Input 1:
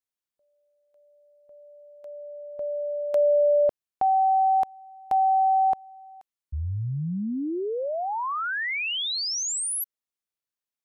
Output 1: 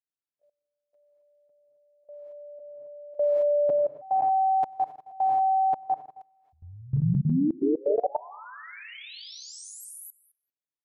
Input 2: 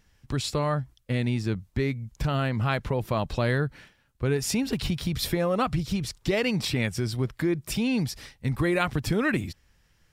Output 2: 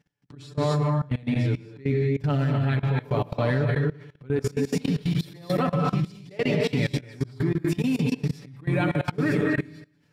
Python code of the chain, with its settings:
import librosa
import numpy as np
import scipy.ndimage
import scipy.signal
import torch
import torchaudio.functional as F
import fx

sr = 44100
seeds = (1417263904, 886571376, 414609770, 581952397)

p1 = fx.high_shelf(x, sr, hz=5000.0, db=-10.0)
p2 = fx.notch(p1, sr, hz=1100.0, q=13.0)
p3 = p2 + fx.echo_feedback(p2, sr, ms=95, feedback_pct=47, wet_db=-14.5, dry=0)
p4 = fx.rev_gated(p3, sr, seeds[0], gate_ms=290, shape='rising', drr_db=0.0)
p5 = fx.auto_swell(p4, sr, attack_ms=122.0)
p6 = scipy.signal.sosfilt(scipy.signal.butter(2, 180.0, 'highpass', fs=sr, output='sos'), p5)
p7 = fx.low_shelf(p6, sr, hz=240.0, db=11.0)
p8 = p7 + 0.83 * np.pad(p7, (int(6.9 * sr / 1000.0), 0))[:len(p7)]
p9 = fx.level_steps(p8, sr, step_db=21)
y = p9 * 10.0 ** (-1.5 / 20.0)